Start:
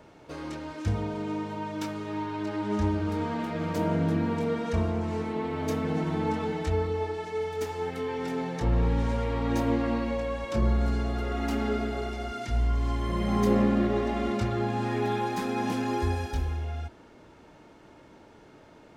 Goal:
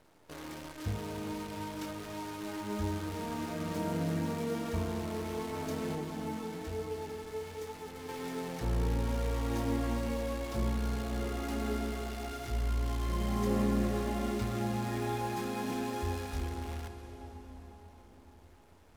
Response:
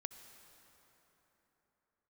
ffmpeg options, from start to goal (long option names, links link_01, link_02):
-filter_complex "[0:a]acrusher=bits=7:dc=4:mix=0:aa=0.000001,asettb=1/sr,asplit=3[link_01][link_02][link_03];[link_01]atrim=end=5.954[link_04];[link_02]atrim=start=5.95:end=8.09,asetpts=PTS-STARTPTS,afade=type=in:duration=0.004:curve=qsin,afade=type=out:start_time=2.136:duration=0.004:curve=qsin,flanger=delay=6.4:depth=7.4:regen=66:speed=1.1:shape=sinusoidal[link_05];[link_03]atrim=start=8.086[link_06];[link_04][link_05]acrossfade=duration=0.004:curve1=hsin:curve2=qsin[link_07];[link_07][link_06]acrossfade=duration=0.004:curve1=qsin:curve2=hsin[link_08];[1:a]atrim=start_sample=2205,asetrate=27342,aresample=44100[link_09];[link_08][link_09]afir=irnorm=-1:irlink=0,volume=-6dB"